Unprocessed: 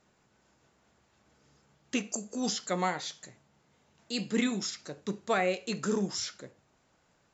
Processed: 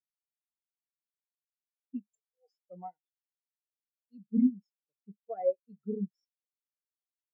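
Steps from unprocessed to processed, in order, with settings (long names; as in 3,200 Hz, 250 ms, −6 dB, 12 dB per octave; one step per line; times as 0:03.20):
0:02.11–0:02.70: inverse Chebyshev high-pass filter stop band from 200 Hz, stop band 40 dB
every bin expanded away from the loudest bin 4 to 1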